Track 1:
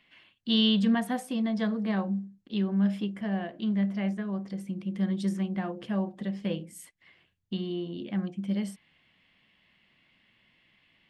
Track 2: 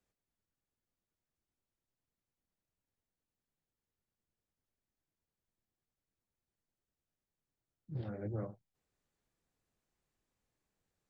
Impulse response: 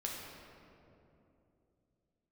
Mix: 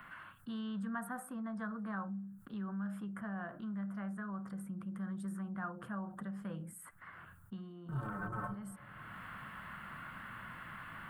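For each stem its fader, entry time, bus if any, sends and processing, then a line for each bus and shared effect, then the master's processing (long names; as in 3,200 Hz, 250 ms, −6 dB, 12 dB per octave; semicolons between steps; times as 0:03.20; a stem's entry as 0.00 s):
0:07.74 −12.5 dB → 0:08.00 −3.5 dB, 0.00 s, no send, high-shelf EQ 4,300 Hz +8 dB; envelope flattener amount 50%; automatic ducking −13 dB, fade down 0.45 s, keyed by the second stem
+1.0 dB, 0.00 s, send −16.5 dB, leveller curve on the samples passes 5; stiff-string resonator 65 Hz, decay 0.31 s, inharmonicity 0.03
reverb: on, RT60 3.0 s, pre-delay 6 ms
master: drawn EQ curve 150 Hz 0 dB, 250 Hz −6 dB, 370 Hz −10 dB, 530 Hz −7 dB, 830 Hz −1 dB, 1,400 Hz +13 dB, 2,100 Hz −13 dB, 3,400 Hz −20 dB, 5,700 Hz −23 dB, 8,900 Hz −4 dB; multiband upward and downward compressor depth 40%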